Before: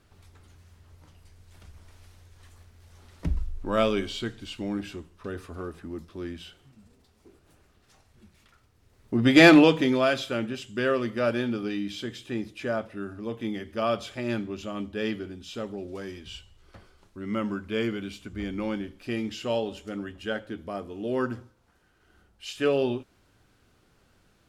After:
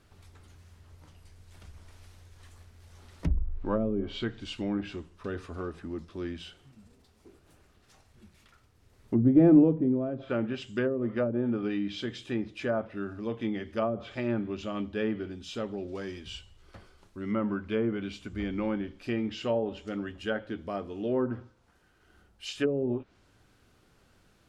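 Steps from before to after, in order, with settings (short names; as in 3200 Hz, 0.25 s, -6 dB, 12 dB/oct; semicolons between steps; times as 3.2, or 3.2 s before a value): treble ducked by the level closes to 330 Hz, closed at -20.5 dBFS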